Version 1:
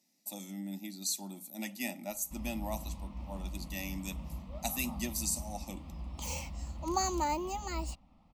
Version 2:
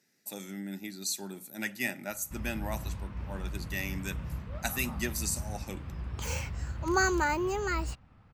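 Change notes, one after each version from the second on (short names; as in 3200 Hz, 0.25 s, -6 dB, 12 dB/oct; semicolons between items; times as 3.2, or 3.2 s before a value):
master: remove fixed phaser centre 420 Hz, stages 6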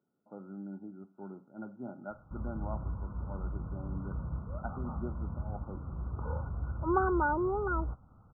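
speech -3.5 dB; master: add brick-wall FIR low-pass 1500 Hz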